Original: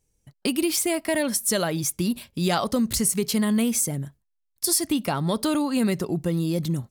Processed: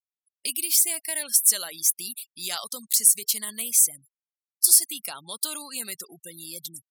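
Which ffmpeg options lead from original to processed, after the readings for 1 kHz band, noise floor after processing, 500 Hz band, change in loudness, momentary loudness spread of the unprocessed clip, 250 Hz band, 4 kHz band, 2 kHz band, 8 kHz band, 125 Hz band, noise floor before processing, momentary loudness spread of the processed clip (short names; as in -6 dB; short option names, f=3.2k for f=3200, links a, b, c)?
-12.5 dB, under -85 dBFS, -18.0 dB, +3.0 dB, 5 LU, -24.0 dB, +0.5 dB, -6.0 dB, +6.5 dB, under -25 dB, -75 dBFS, 18 LU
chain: -af "aderivative,afftfilt=real='re*gte(hypot(re,im),0.00562)':imag='im*gte(hypot(re,im),0.00562)':win_size=1024:overlap=0.75,volume=5dB"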